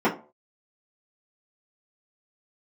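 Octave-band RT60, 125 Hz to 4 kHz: 0.35, 0.35, 0.40, 0.35, 0.25, 0.20 seconds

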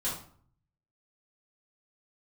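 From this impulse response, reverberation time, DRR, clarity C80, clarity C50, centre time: 0.50 s, −9.0 dB, 9.0 dB, 4.0 dB, 39 ms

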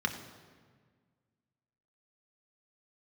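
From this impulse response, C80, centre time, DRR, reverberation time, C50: 10.5 dB, 20 ms, 3.5 dB, 1.6 s, 9.0 dB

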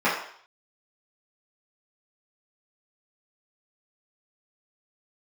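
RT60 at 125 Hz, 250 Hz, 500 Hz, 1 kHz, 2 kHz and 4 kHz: 0.35, 0.45, 0.55, 0.60, 0.60, 0.65 seconds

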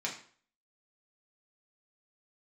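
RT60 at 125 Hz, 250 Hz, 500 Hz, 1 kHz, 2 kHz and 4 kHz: 0.45, 0.45, 0.50, 0.50, 0.45, 0.40 seconds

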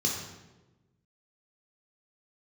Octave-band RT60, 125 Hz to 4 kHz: 1.6, 1.5, 1.3, 1.0, 0.90, 0.80 seconds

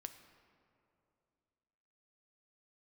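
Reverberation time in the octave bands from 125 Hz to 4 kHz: 2.9, 2.9, 2.8, 2.5, 2.0, 1.4 seconds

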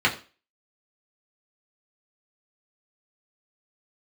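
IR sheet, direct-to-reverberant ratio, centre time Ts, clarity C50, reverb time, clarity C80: −3.5 dB, 15 ms, 13.5 dB, 0.35 s, 17.5 dB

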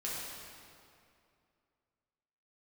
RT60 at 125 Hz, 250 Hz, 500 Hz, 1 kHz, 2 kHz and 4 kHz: 2.6, 2.6, 2.5, 2.4, 2.1, 1.8 seconds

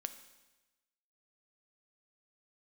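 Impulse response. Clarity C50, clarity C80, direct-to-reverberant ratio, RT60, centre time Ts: 11.5 dB, 13.5 dB, 9.0 dB, 1.1 s, 9 ms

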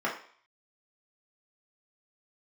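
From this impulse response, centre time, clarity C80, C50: 25 ms, 12.0 dB, 7.5 dB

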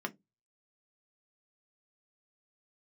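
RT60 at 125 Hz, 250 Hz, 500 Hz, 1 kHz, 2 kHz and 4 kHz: 0.30, 0.30, 0.20, 0.15, 0.15, 0.10 seconds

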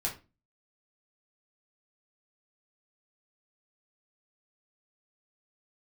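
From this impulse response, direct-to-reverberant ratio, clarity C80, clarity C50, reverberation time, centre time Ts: −3.0 dB, 17.5 dB, 11.0 dB, 0.30 s, 18 ms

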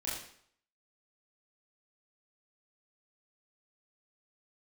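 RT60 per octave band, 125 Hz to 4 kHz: 0.55, 0.55, 0.60, 0.65, 0.60, 0.55 seconds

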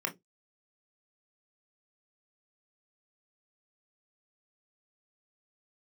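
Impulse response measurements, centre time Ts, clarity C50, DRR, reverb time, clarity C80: 13 ms, 18.5 dB, 2.0 dB, non-exponential decay, 29.0 dB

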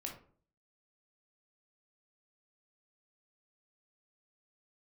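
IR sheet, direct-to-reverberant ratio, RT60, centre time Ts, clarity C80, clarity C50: 0.0 dB, 0.50 s, 23 ms, 12.5 dB, 7.0 dB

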